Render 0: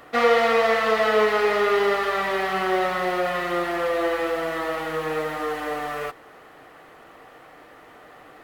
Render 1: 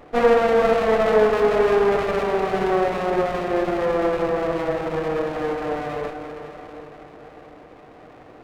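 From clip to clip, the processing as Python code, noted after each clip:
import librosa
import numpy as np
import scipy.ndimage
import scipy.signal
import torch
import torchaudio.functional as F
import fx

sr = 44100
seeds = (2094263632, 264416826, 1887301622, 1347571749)

y = scipy.signal.sosfilt(scipy.signal.bessel(2, 1000.0, 'lowpass', norm='mag', fs=sr, output='sos'), x)
y = fx.echo_diffused(y, sr, ms=470, feedback_pct=51, wet_db=-9.0)
y = fx.running_max(y, sr, window=17)
y = y * 10.0 ** (4.5 / 20.0)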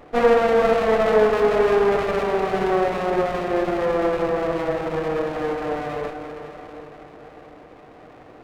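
y = x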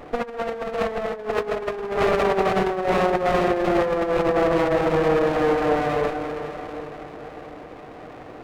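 y = fx.over_compress(x, sr, threshold_db=-23.0, ratio=-0.5)
y = y * 10.0 ** (2.0 / 20.0)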